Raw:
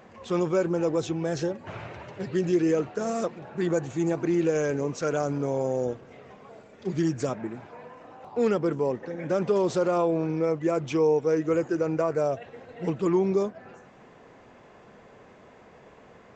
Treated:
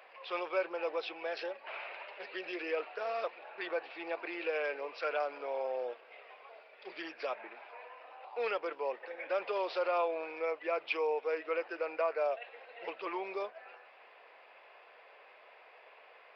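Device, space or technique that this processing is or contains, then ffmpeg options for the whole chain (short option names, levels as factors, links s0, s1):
musical greeting card: -af "aresample=11025,aresample=44100,highpass=f=550:w=0.5412,highpass=f=550:w=1.3066,equalizer=f=2500:t=o:w=0.5:g=10,volume=0.631"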